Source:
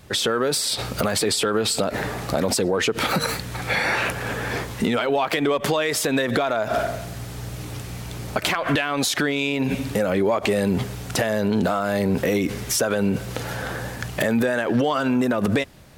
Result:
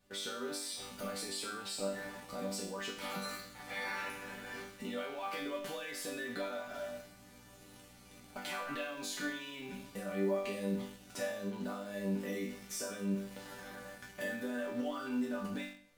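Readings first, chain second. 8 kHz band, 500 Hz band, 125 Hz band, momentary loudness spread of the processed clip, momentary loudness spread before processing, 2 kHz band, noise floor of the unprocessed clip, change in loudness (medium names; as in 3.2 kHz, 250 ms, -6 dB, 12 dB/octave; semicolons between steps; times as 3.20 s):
-17.0 dB, -17.5 dB, -20.5 dB, 11 LU, 8 LU, -17.0 dB, -34 dBFS, -17.0 dB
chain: chord resonator G3 major, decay 0.59 s; in parallel at -11 dB: bit crusher 8-bit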